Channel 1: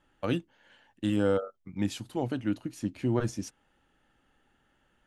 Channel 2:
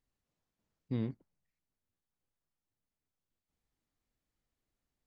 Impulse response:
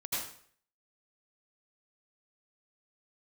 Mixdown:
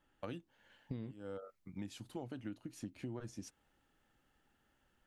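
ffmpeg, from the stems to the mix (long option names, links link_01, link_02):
-filter_complex "[0:a]volume=-7dB[link_01];[1:a]dynaudnorm=framelen=280:gausssize=3:maxgain=8.5dB,volume=-4.5dB,asplit=2[link_02][link_03];[link_03]apad=whole_len=223532[link_04];[link_01][link_04]sidechaincompress=threshold=-45dB:ratio=5:attack=16:release=416[link_05];[link_05][link_02]amix=inputs=2:normalize=0,acompressor=threshold=-40dB:ratio=12"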